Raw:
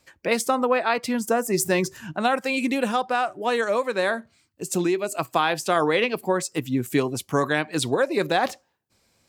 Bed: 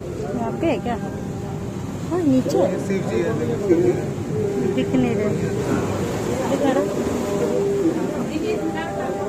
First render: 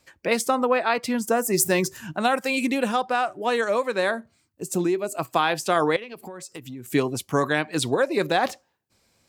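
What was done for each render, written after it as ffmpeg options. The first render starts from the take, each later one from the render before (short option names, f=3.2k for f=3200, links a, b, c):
-filter_complex "[0:a]asettb=1/sr,asplit=3[a][b][c];[a]atrim=end=1.334[d];[b]atrim=start=1.33:end=2.67,asetpts=PTS-STARTPTS,afade=t=in:d=0.004:c=qsin,afade=t=out:st=1.336:d=0.004:c=qsin,highshelf=f=8k:g=7.5[e];[c]atrim=start=2.666[f];[d][e]acrossfade=d=0.004:c1=hsin:c2=qsin[g];[g][f]acrossfade=d=0.004:c1=qsin:c2=hsin,asettb=1/sr,asplit=3[h][i][j];[h]atrim=end=4.114[k];[i]atrim=start=4.11:end=5.22,asetpts=PTS-STARTPTS,afade=t=in:d=0.004:c=qsin,afade=t=out:st=1.106:d=0.004:c=qsin,equalizer=f=3.1k:t=o:w=2.3:g=-6[l];[j]atrim=start=5.216[m];[k][l]acrossfade=d=0.004:c1=hsin:c2=qsin[n];[n][m]acrossfade=d=0.004:c1=qsin:c2=hsin,asettb=1/sr,asplit=3[o][p][q];[o]atrim=end=5.964[r];[p]atrim=start=5.96:end=6.9,asetpts=PTS-STARTPTS,afade=t=in:d=0.004:c=qsin,afade=t=out:st=0.936:d=0.004:c=qsin,acompressor=threshold=-34dB:ratio=8:attack=3.2:release=140:knee=1:detection=peak[s];[q]atrim=start=6.896[t];[r][s]acrossfade=d=0.004:c1=hsin:c2=qsin[u];[u][t]acrossfade=d=0.004:c1=qsin:c2=hsin"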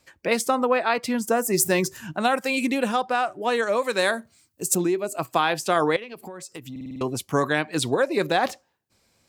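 -filter_complex "[0:a]asettb=1/sr,asplit=3[a][b][c];[a]atrim=end=3.824[d];[b]atrim=start=3.82:end=4.75,asetpts=PTS-STARTPTS,afade=t=in:d=0.004:c=qsin,afade=t=out:st=0.926:d=0.004:c=qsin,highshelf=f=3.5k:g=11.5[e];[c]atrim=start=4.746[f];[d][e]acrossfade=d=0.004:c1=hsin:c2=qsin[g];[g][f]acrossfade=d=0.004:c1=qsin:c2=hsin,asplit=7[h][i][j][k][l][m][n];[h]atrim=end=6.762[o];[i]atrim=start=6.708:end=6.762[p];[j]atrim=start=6.708:end=6.762[q];[k]atrim=start=6.708:end=6.762[r];[l]atrim=start=6.708:end=6.762[s];[m]atrim=start=6.708:end=6.762[t];[n]atrim=start=7.008[u];[o][p]acrossfade=d=0.004:c1=hsin:c2=hsin[v];[v][q]acrossfade=d=0.004:c1=hsin:c2=hsin[w];[w][r]acrossfade=d=0.004:c1=hsin:c2=hsin[x];[x][s]acrossfade=d=0.004:c1=hsin:c2=hsin[y];[y][t]acrossfade=d=0.004:c1=hsin:c2=hsin[z];[z][u]acrossfade=d=0.004:c1=hsin:c2=hsin"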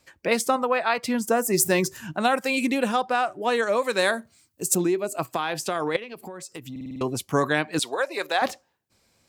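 -filter_complex "[0:a]asettb=1/sr,asplit=3[a][b][c];[a]atrim=end=0.564[d];[b]atrim=start=0.56:end=1.03,asetpts=PTS-STARTPTS,afade=t=in:d=0.004:c=qsin,afade=t=out:st=0.466:d=0.004:c=qsin,equalizer=f=320:t=o:w=0.77:g=-10.5[e];[c]atrim=start=1.026[f];[d][e]acrossfade=d=0.004:c1=hsin:c2=qsin[g];[g][f]acrossfade=d=0.004:c1=qsin:c2=hsin,asettb=1/sr,asplit=3[h][i][j];[h]atrim=end=5.254[k];[i]atrim=start=5.25:end=5.95,asetpts=PTS-STARTPTS,afade=t=in:d=0.004:c=qsin,afade=t=out:st=0.696:d=0.004:c=qsin,acompressor=threshold=-21dB:ratio=6:attack=3.2:release=140:knee=1:detection=peak[l];[j]atrim=start=5.946[m];[k][l]acrossfade=d=0.004:c1=hsin:c2=qsin[n];[n][m]acrossfade=d=0.004:c1=qsin:c2=hsin,asettb=1/sr,asplit=3[o][p][q];[o]atrim=end=7.794[r];[p]atrim=start=7.79:end=8.42,asetpts=PTS-STARTPTS,afade=t=in:d=0.004:c=qsin,afade=t=out:st=0.626:d=0.004:c=qsin,highpass=640[s];[q]atrim=start=8.416[t];[r][s]acrossfade=d=0.004:c1=hsin:c2=qsin[u];[u][t]acrossfade=d=0.004:c1=qsin:c2=hsin"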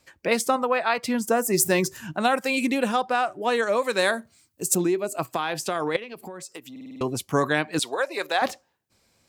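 -filter_complex "[0:a]asettb=1/sr,asplit=3[a][b][c];[a]atrim=end=6.524[d];[b]atrim=start=6.52:end=7.01,asetpts=PTS-STARTPTS,afade=t=in:d=0.004:c=qsin,afade=t=out:st=0.486:d=0.004:c=qsin,highpass=300[e];[c]atrim=start=7.006[f];[d][e]acrossfade=d=0.004:c1=hsin:c2=qsin[g];[g][f]acrossfade=d=0.004:c1=qsin:c2=hsin"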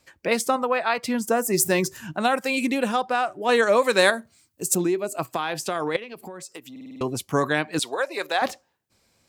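-filter_complex "[0:a]asplit=3[a][b][c];[a]atrim=end=3.492[d];[b]atrim=start=3.488:end=4.102,asetpts=PTS-STARTPTS,volume=4.5dB[e];[c]atrim=start=4.098[f];[d][e]acrossfade=d=0.004:c1=hsin:c2=hsin[g];[g][f]acrossfade=d=0.004:c1=hsin:c2=hsin"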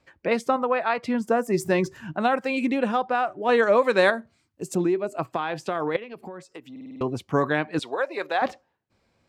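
-af "lowpass=f=2.9k:p=1,aemphasis=mode=reproduction:type=cd"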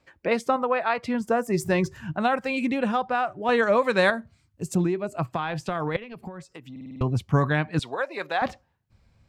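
-af "asubboost=boost=7:cutoff=130"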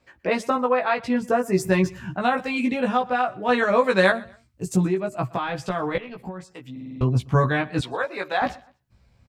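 -filter_complex "[0:a]asplit=2[a][b];[b]adelay=16,volume=-2dB[c];[a][c]amix=inputs=2:normalize=0,aecho=1:1:122|244:0.0708|0.0227"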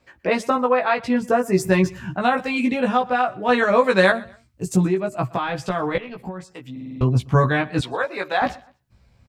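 -af "volume=2.5dB,alimiter=limit=-3dB:level=0:latency=1"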